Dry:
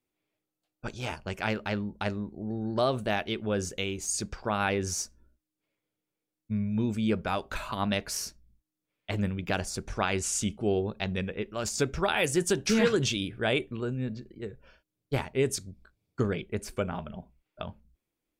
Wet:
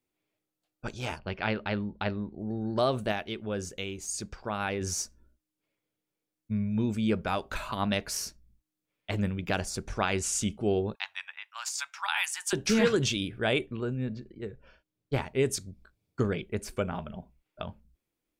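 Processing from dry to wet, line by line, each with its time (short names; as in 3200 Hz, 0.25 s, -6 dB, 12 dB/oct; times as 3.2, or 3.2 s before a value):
1.19–2.39 steep low-pass 4700 Hz 48 dB/oct
3.12–4.81 gain -4 dB
10.95–12.53 elliptic high-pass 880 Hz, stop band 50 dB
13.66–15.26 high shelf 7000 Hz -9 dB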